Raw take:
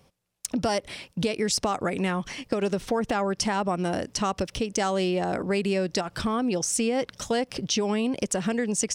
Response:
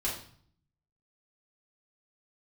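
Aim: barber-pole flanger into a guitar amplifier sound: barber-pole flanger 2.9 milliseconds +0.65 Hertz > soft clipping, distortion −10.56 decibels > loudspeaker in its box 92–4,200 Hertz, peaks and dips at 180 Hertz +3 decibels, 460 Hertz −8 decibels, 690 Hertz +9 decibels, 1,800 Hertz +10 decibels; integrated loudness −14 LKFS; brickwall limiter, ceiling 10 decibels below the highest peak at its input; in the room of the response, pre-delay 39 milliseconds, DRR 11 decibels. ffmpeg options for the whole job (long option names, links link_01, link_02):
-filter_complex "[0:a]alimiter=limit=-18dB:level=0:latency=1,asplit=2[link_01][link_02];[1:a]atrim=start_sample=2205,adelay=39[link_03];[link_02][link_03]afir=irnorm=-1:irlink=0,volume=-16dB[link_04];[link_01][link_04]amix=inputs=2:normalize=0,asplit=2[link_05][link_06];[link_06]adelay=2.9,afreqshift=0.65[link_07];[link_05][link_07]amix=inputs=2:normalize=1,asoftclip=threshold=-29dB,highpass=92,equalizer=frequency=180:width_type=q:width=4:gain=3,equalizer=frequency=460:width_type=q:width=4:gain=-8,equalizer=frequency=690:width_type=q:width=4:gain=9,equalizer=frequency=1800:width_type=q:width=4:gain=10,lowpass=frequency=4200:width=0.5412,lowpass=frequency=4200:width=1.3066,volume=19.5dB"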